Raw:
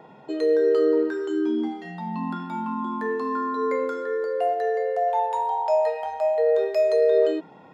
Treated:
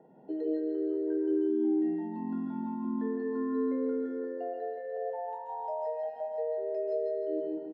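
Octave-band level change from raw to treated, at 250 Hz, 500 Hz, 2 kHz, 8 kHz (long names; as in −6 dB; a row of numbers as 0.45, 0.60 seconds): −2.0 dB, −11.0 dB, −17.5 dB, can't be measured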